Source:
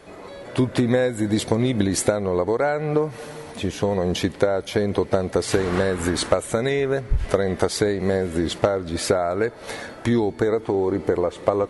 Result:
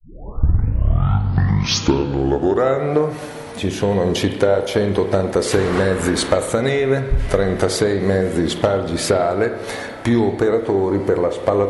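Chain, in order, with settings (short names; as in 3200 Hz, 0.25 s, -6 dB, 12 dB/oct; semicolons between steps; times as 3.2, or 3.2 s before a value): tape start at the beginning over 2.97 s; added harmonics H 5 -21 dB, 7 -37 dB, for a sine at -4 dBFS; spring tank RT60 1.2 s, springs 30/52 ms, chirp 25 ms, DRR 6.5 dB; gain +1.5 dB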